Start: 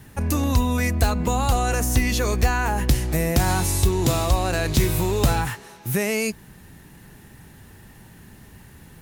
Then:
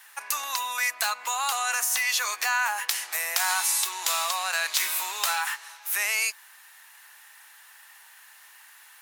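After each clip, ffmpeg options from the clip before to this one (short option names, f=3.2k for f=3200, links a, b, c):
-af "highpass=f=1k:w=0.5412,highpass=f=1k:w=1.3066,volume=2.5dB"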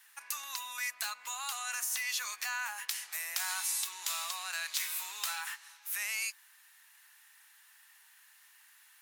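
-af "equalizer=f=500:w=0.67:g=-11,volume=-8.5dB"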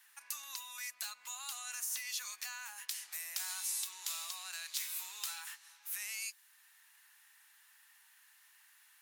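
-filter_complex "[0:a]acrossover=split=210|3000[a][b][c];[b]acompressor=threshold=-59dB:ratio=1.5[d];[a][d][c]amix=inputs=3:normalize=0,volume=-3.5dB"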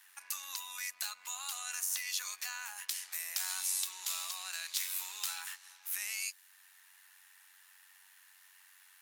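-af "tremolo=f=93:d=0.519,volume=5.5dB"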